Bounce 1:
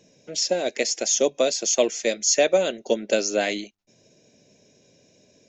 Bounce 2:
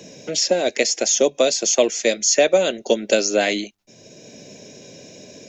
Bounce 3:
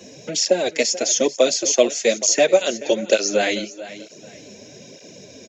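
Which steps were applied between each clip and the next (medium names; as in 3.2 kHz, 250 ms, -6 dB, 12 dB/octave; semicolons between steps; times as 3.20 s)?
three bands compressed up and down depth 40%; trim +4.5 dB
feedback delay 437 ms, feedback 29%, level -16 dB; cancelling through-zero flanger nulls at 1.1 Hz, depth 7.2 ms; trim +2.5 dB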